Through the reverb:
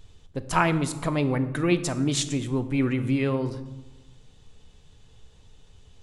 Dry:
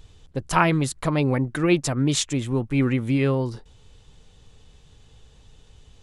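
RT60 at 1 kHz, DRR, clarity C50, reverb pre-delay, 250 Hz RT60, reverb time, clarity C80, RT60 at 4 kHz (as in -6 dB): 1.1 s, 10.0 dB, 13.5 dB, 3 ms, 1.5 s, 1.1 s, 15.5 dB, 0.70 s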